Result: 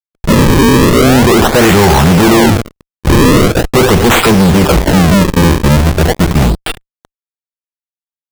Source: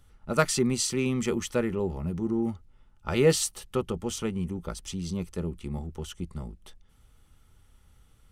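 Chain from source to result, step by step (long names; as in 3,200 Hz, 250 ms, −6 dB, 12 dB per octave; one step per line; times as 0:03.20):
0:01.61–0:03.26: gain on a spectral selection 710–4,900 Hz +11 dB
0:04.20–0:04.82: all-pass dispersion lows, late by 47 ms, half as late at 590 Hz
on a send at −12 dB: convolution reverb, pre-delay 3 ms
on the sum: fuzz pedal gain 46 dB, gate −46 dBFS
sample-and-hold swept by an LFO 36×, swing 160% 0.41 Hz
level +8 dB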